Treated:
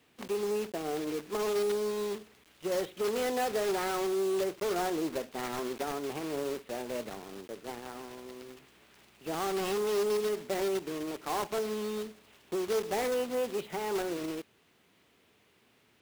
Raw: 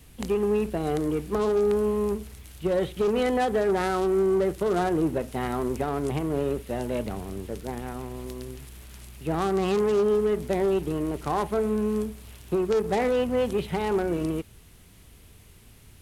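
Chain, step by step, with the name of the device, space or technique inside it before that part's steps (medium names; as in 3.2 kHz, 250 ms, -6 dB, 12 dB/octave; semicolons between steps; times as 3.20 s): early digital voice recorder (band-pass 290–3600 Hz; block-companded coder 3-bit); trim -6 dB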